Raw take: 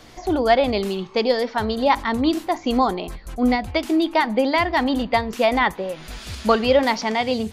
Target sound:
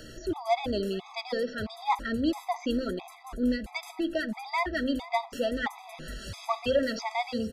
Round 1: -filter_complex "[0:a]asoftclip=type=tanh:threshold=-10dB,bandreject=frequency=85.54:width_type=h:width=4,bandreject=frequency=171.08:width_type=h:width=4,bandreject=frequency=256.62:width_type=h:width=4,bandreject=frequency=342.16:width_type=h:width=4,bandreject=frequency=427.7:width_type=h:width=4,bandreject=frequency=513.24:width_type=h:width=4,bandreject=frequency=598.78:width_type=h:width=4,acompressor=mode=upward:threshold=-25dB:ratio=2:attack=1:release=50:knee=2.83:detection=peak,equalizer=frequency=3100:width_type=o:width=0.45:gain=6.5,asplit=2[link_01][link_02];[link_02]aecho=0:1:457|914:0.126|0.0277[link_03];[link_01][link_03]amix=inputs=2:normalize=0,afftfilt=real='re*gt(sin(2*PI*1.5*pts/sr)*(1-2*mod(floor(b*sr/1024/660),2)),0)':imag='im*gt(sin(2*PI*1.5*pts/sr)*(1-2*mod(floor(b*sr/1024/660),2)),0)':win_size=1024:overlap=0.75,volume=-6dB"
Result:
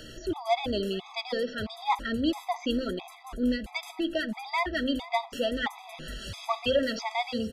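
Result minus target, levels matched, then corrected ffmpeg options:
4,000 Hz band +4.0 dB
-filter_complex "[0:a]asoftclip=type=tanh:threshold=-10dB,bandreject=frequency=85.54:width_type=h:width=4,bandreject=frequency=171.08:width_type=h:width=4,bandreject=frequency=256.62:width_type=h:width=4,bandreject=frequency=342.16:width_type=h:width=4,bandreject=frequency=427.7:width_type=h:width=4,bandreject=frequency=513.24:width_type=h:width=4,bandreject=frequency=598.78:width_type=h:width=4,acompressor=mode=upward:threshold=-25dB:ratio=2:attack=1:release=50:knee=2.83:detection=peak,asplit=2[link_01][link_02];[link_02]aecho=0:1:457|914:0.126|0.0277[link_03];[link_01][link_03]amix=inputs=2:normalize=0,afftfilt=real='re*gt(sin(2*PI*1.5*pts/sr)*(1-2*mod(floor(b*sr/1024/660),2)),0)':imag='im*gt(sin(2*PI*1.5*pts/sr)*(1-2*mod(floor(b*sr/1024/660),2)),0)':win_size=1024:overlap=0.75,volume=-6dB"

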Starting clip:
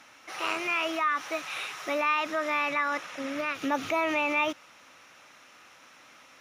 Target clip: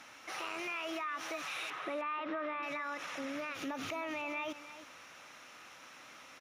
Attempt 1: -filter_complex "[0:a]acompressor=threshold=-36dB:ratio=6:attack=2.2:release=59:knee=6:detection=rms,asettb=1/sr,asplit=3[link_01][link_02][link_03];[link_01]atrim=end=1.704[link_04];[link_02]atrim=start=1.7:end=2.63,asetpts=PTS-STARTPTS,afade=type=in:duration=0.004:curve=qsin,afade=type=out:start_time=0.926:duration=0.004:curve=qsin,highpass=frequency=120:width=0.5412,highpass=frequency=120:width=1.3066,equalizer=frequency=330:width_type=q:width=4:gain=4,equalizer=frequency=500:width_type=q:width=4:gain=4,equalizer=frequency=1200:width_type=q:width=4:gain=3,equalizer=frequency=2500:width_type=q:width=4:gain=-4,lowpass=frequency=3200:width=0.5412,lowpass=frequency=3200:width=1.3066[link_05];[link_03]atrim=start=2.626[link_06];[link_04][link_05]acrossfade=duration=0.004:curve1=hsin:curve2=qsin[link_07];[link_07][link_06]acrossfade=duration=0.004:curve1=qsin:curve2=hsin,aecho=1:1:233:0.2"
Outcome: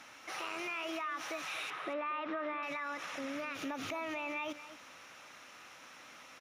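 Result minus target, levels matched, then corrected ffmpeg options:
echo 79 ms early
-filter_complex "[0:a]acompressor=threshold=-36dB:ratio=6:attack=2.2:release=59:knee=6:detection=rms,asettb=1/sr,asplit=3[link_01][link_02][link_03];[link_01]atrim=end=1.704[link_04];[link_02]atrim=start=1.7:end=2.63,asetpts=PTS-STARTPTS,afade=type=in:duration=0.004:curve=qsin,afade=type=out:start_time=0.926:duration=0.004:curve=qsin,highpass=frequency=120:width=0.5412,highpass=frequency=120:width=1.3066,equalizer=frequency=330:width_type=q:width=4:gain=4,equalizer=frequency=500:width_type=q:width=4:gain=4,equalizer=frequency=1200:width_type=q:width=4:gain=3,equalizer=frequency=2500:width_type=q:width=4:gain=-4,lowpass=frequency=3200:width=0.5412,lowpass=frequency=3200:width=1.3066[link_05];[link_03]atrim=start=2.626[link_06];[link_04][link_05]acrossfade=duration=0.004:curve1=hsin:curve2=qsin[link_07];[link_07][link_06]acrossfade=duration=0.004:curve1=qsin:curve2=hsin,aecho=1:1:312:0.2"

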